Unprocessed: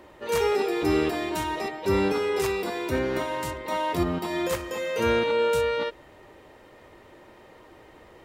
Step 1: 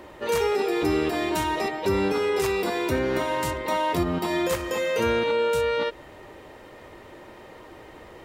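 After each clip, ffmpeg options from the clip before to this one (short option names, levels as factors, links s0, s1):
-af "acompressor=threshold=0.0398:ratio=2.5,volume=1.88"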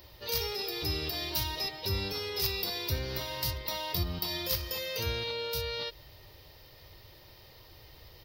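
-af "firequalizer=gain_entry='entry(110,0);entry(230,-19);entry(490,-14);entry(1400,-15);entry(4900,10);entry(7400,-14);entry(15000,14)':delay=0.05:min_phase=1"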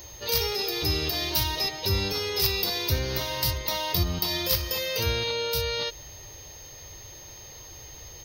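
-af "aeval=exprs='val(0)+0.00282*sin(2*PI*6400*n/s)':c=same,volume=2.11"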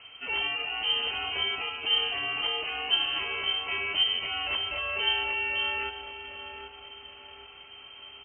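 -filter_complex "[0:a]lowpass=f=2700:t=q:w=0.5098,lowpass=f=2700:t=q:w=0.6013,lowpass=f=2700:t=q:w=0.9,lowpass=f=2700:t=q:w=2.563,afreqshift=-3200,asplit=2[s0][s1];[s1]adelay=780,lowpass=f=1100:p=1,volume=0.501,asplit=2[s2][s3];[s3]adelay=780,lowpass=f=1100:p=1,volume=0.49,asplit=2[s4][s5];[s5]adelay=780,lowpass=f=1100:p=1,volume=0.49,asplit=2[s6][s7];[s7]adelay=780,lowpass=f=1100:p=1,volume=0.49,asplit=2[s8][s9];[s9]adelay=780,lowpass=f=1100:p=1,volume=0.49,asplit=2[s10][s11];[s11]adelay=780,lowpass=f=1100:p=1,volume=0.49[s12];[s0][s2][s4][s6][s8][s10][s12]amix=inputs=7:normalize=0"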